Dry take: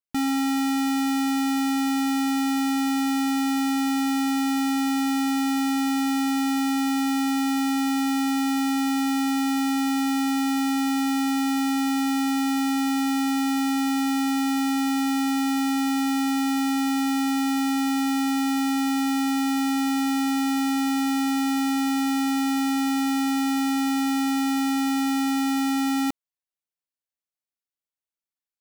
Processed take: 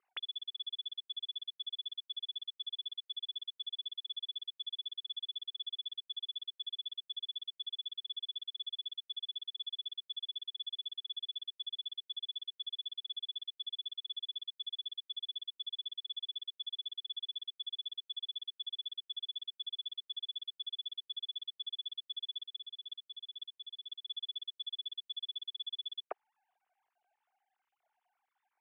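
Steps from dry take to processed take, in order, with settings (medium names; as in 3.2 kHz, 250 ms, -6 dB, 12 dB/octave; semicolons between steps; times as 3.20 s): formants replaced by sine waves; 22.45–24.06 s: compressor with a negative ratio -25 dBFS, ratio -1; band-pass filter 400 Hz, Q 4.4; trim +12 dB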